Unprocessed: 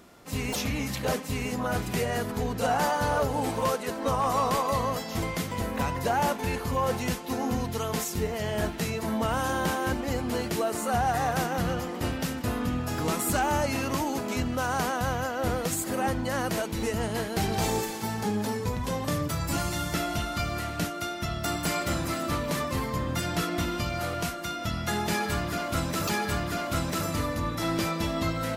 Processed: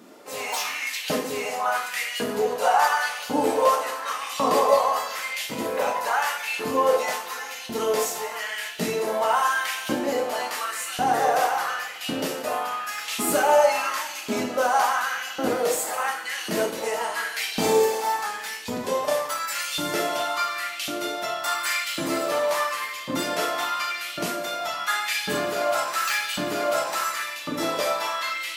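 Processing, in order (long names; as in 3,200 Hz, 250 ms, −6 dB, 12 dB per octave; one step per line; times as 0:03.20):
auto-filter high-pass saw up 0.91 Hz 240–3,300 Hz
coupled-rooms reverb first 0.51 s, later 2.1 s, DRR −1.5 dB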